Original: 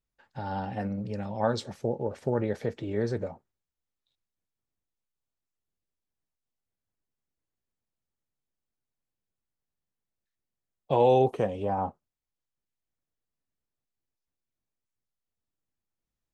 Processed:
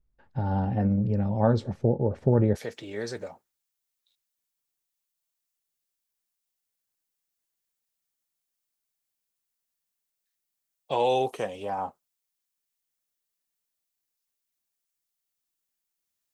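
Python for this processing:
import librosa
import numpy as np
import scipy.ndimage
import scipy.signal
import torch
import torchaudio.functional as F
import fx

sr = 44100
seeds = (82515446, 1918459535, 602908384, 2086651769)

y = fx.tilt_eq(x, sr, slope=fx.steps((0.0, -3.5), (2.55, 3.5)))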